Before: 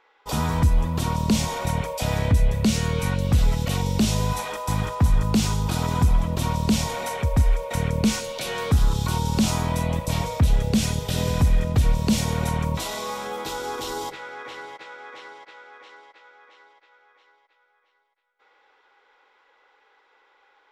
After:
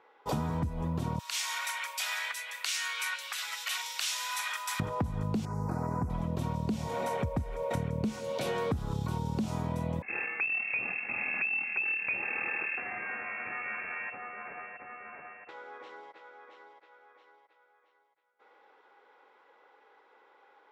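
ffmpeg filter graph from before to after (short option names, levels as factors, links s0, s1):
-filter_complex "[0:a]asettb=1/sr,asplit=3[s0][s1][s2];[s0]atrim=end=1.194[s3];[s1]atrim=start=1.19:end=4.8,asetpts=PTS-STARTPTS,afade=t=in:d=0.004:c=qsin,afade=t=out:st=3.606:d=0.004:c=qsin,highpass=f=1500:w=0.5412,highpass=f=1500:w=1.3066,acontrast=82[s4];[s2]atrim=start=4.796[s5];[s3][s4]acrossfade=d=0.004:c1=hsin:c2=qsin[s6];[s6][s5]acrossfade=d=0.004:c1=qsin:c2=hsin,asettb=1/sr,asplit=3[s7][s8][s9];[s7]atrim=end=5.454[s10];[s8]atrim=start=5.45:end=6.1,asetpts=PTS-STARTPTS,afade=t=in:d=0.004:c=qsin,afade=t=out:st=0.646:d=0.004:c=qsin,asuperstop=centerf=3200:order=4:qfactor=0.89,lowshelf=f=320:g=-5,acrossover=split=3500[s11][s12];[s12]acompressor=threshold=0.00562:ratio=4:attack=1:release=60[s13];[s11][s13]amix=inputs=2:normalize=0[s14];[s9]atrim=start=6.096[s15];[s10][s14]acrossfade=d=0.004:c1=hsin:c2=qsin[s16];[s16][s15]acrossfade=d=0.004:c1=qsin:c2=hsin,asettb=1/sr,asplit=3[s17][s18][s19];[s17]atrim=end=10.024[s20];[s18]atrim=start=10.02:end=15.49,asetpts=PTS-STARTPTS,afade=t=in:d=0.004:c=qsin,afade=t=out:st=5.466:d=0.004:c=qsin,aeval=exprs='if(lt(val(0),0),0.251*val(0),val(0))':c=same,lowpass=f=2300:t=q:w=0.5098,lowpass=f=2300:t=q:w=0.6013,lowpass=f=2300:t=q:w=0.9,lowpass=f=2300:t=q:w=2.563,afreqshift=-2700[s21];[s19]atrim=start=15.486[s22];[s20][s21]acrossfade=d=0.004:c1=hsin:c2=qsin[s23];[s23][s22]acrossfade=d=0.004:c1=qsin:c2=hsin,highpass=100,tiltshelf=f=1500:g=6.5,acompressor=threshold=0.0501:ratio=10,volume=0.75"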